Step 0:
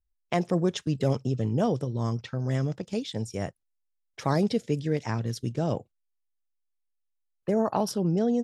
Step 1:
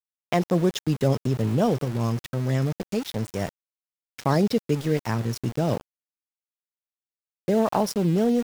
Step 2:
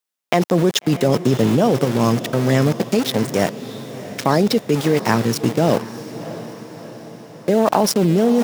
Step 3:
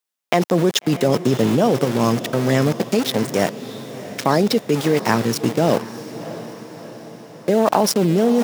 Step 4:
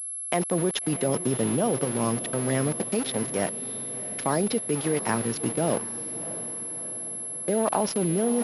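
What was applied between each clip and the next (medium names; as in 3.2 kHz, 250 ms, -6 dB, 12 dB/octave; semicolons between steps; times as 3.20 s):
small samples zeroed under -35.5 dBFS; trim +3.5 dB
high-pass 180 Hz 12 dB/octave; in parallel at -0.5 dB: compressor with a negative ratio -26 dBFS, ratio -0.5; on the sum: echo that smears into a reverb 666 ms, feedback 57%, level -14 dB; trim +4.5 dB
bass shelf 97 Hz -7.5 dB
class-D stage that switches slowly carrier 11 kHz; trim -8.5 dB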